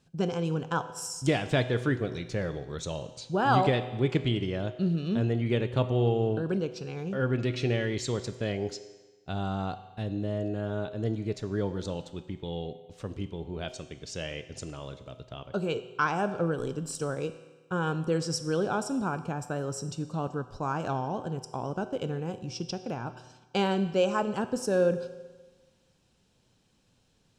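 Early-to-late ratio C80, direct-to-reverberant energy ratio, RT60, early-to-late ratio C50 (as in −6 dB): 14.0 dB, 10.5 dB, 1.3 s, 12.5 dB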